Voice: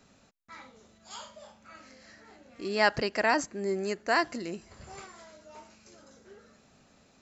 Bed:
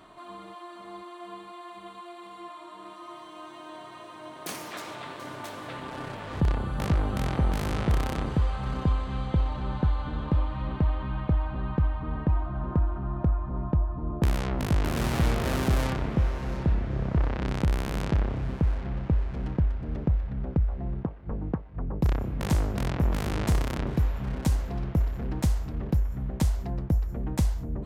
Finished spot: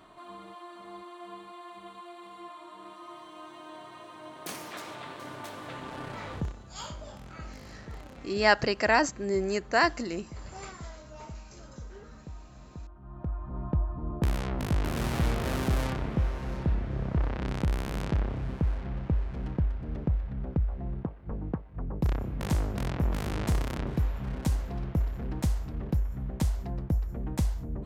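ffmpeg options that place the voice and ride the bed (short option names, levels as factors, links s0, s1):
-filter_complex "[0:a]adelay=5650,volume=1.33[s0];[1:a]volume=4.73,afade=t=out:st=6.3:d=0.23:silence=0.149624,afade=t=in:st=12.99:d=0.76:silence=0.158489[s1];[s0][s1]amix=inputs=2:normalize=0"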